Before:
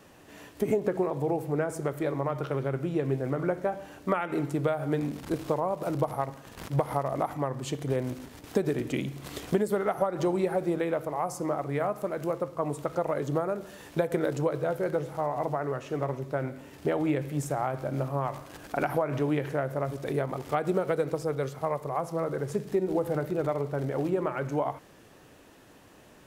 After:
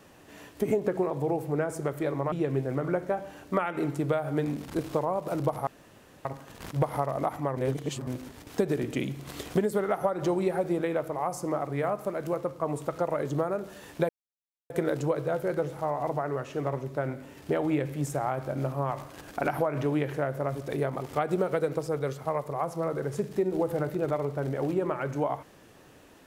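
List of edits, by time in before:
0:02.32–0:02.87: remove
0:06.22: splice in room tone 0.58 s
0:07.54–0:08.04: reverse
0:14.06: splice in silence 0.61 s

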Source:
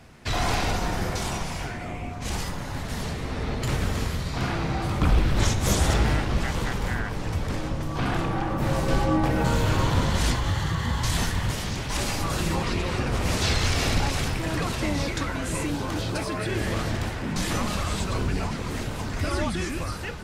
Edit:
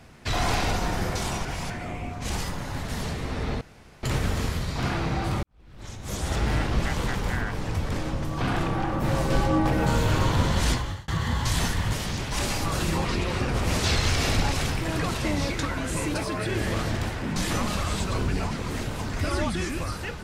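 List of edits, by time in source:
0:01.45–0:01.70: reverse
0:03.61: splice in room tone 0.42 s
0:05.01–0:06.24: fade in quadratic
0:10.29–0:10.66: fade out
0:15.72–0:16.14: remove

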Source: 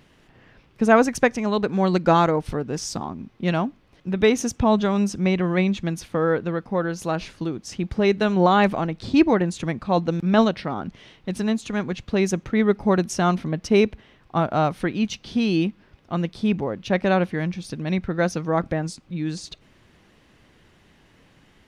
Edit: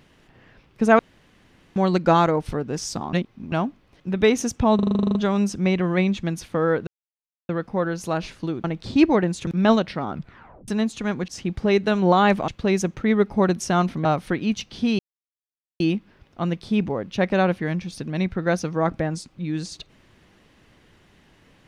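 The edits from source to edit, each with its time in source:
0:00.99–0:01.76: fill with room tone
0:03.13–0:03.52: reverse
0:04.75: stutter 0.04 s, 11 plays
0:06.47: splice in silence 0.62 s
0:07.62–0:08.82: move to 0:11.97
0:09.65–0:10.16: remove
0:10.80: tape stop 0.57 s
0:13.54–0:14.58: remove
0:15.52: splice in silence 0.81 s

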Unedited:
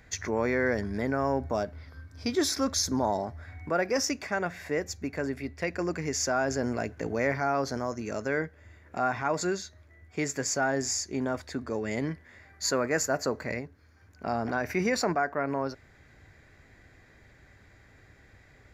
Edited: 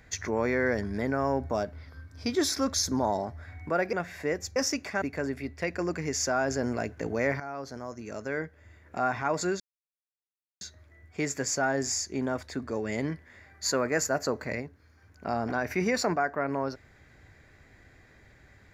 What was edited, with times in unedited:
0:03.93–0:04.39: move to 0:05.02
0:07.40–0:09.05: fade in linear, from −12 dB
0:09.60: splice in silence 1.01 s

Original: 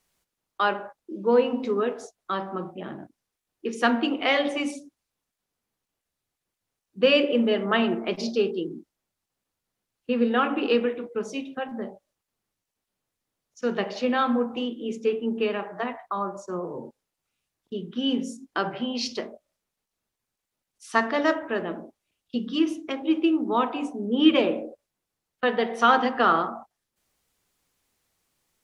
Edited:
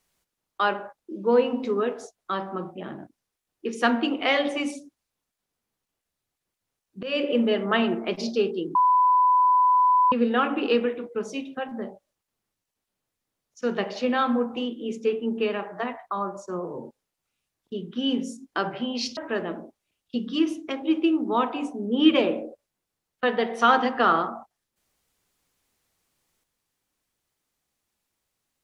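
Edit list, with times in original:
0:07.03–0:07.32: fade in, from −23 dB
0:08.75–0:10.12: beep over 999 Hz −15.5 dBFS
0:19.17–0:21.37: remove

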